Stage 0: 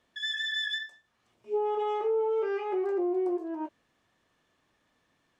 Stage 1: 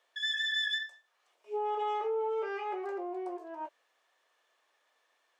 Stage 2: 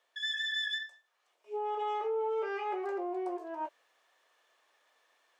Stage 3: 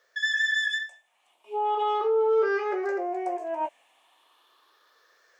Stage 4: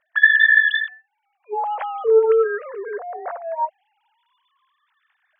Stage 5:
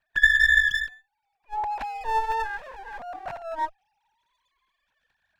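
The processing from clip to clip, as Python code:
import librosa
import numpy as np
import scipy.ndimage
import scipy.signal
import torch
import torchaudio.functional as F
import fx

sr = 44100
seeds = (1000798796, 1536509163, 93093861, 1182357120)

y1 = scipy.signal.sosfilt(scipy.signal.butter(4, 490.0, 'highpass', fs=sr, output='sos'), x)
y2 = fx.rider(y1, sr, range_db=3, speed_s=2.0)
y3 = fx.spec_ripple(y2, sr, per_octave=0.57, drift_hz=0.38, depth_db=11)
y3 = y3 * librosa.db_to_amplitude(6.5)
y4 = fx.sine_speech(y3, sr)
y4 = y4 * librosa.db_to_amplitude(7.5)
y5 = fx.lower_of_two(y4, sr, delay_ms=1.2)
y5 = y5 * librosa.db_to_amplitude(-4.5)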